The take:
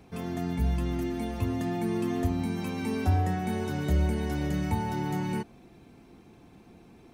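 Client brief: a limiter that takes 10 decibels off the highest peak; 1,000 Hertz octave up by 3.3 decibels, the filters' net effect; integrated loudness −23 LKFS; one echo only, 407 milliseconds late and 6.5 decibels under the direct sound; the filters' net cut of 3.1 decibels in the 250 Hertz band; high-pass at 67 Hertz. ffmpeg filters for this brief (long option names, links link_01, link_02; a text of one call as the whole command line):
ffmpeg -i in.wav -af "highpass=67,equalizer=frequency=250:width_type=o:gain=-4.5,equalizer=frequency=1000:width_type=o:gain=5,alimiter=level_in=1dB:limit=-24dB:level=0:latency=1,volume=-1dB,aecho=1:1:407:0.473,volume=10dB" out.wav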